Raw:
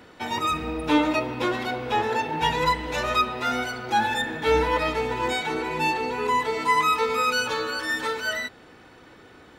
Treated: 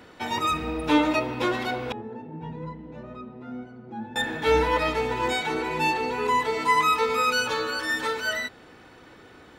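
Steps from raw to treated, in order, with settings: 1.92–4.16 band-pass 190 Hz, Q 1.9

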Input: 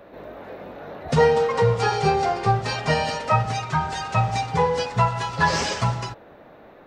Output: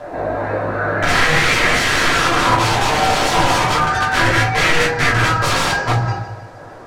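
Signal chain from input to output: Doppler pass-by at 2.11, 11 m/s, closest 2.9 m; thirty-one-band EQ 100 Hz +7 dB, 1600 Hz +9 dB, 3150 Hz -8 dB; compressor 20:1, threshold -35 dBFS, peak gain reduction 20.5 dB; on a send: split-band echo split 820 Hz, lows 0.116 s, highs 0.153 s, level -12 dB; on the sum: random-step tremolo, depth 55%; wrapped overs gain 42 dB; shoebox room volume 170 m³, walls furnished, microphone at 3 m; bit-crush 12-bit; air absorption 62 m; maximiser +28.5 dB; LFO bell 0.32 Hz 760–2000 Hz +9 dB; gain -4.5 dB

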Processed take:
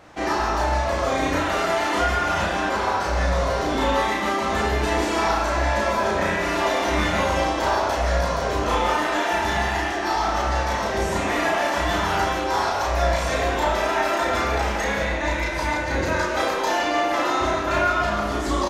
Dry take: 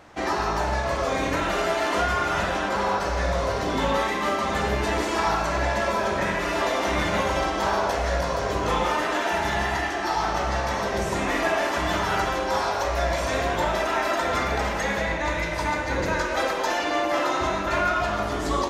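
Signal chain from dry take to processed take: doubler 33 ms -2 dB

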